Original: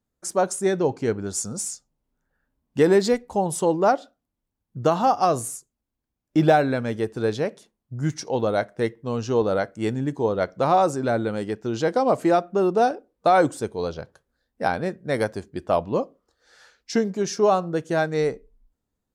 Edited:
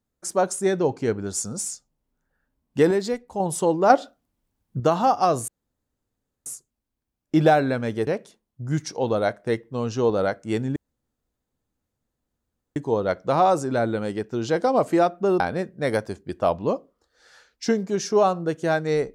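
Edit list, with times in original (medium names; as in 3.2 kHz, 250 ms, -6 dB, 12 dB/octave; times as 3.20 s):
2.91–3.40 s: gain -5.5 dB
3.90–4.80 s: gain +6.5 dB
5.48 s: insert room tone 0.98 s
7.09–7.39 s: delete
10.08 s: insert room tone 2.00 s
12.72–14.67 s: delete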